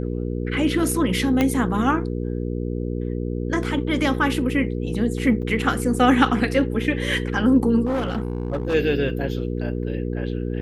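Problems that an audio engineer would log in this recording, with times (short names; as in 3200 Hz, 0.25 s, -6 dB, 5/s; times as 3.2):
hum 60 Hz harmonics 8 -26 dBFS
1.41 pop -7 dBFS
5.42–5.43 gap 6.9 ms
7.85–8.75 clipped -19.5 dBFS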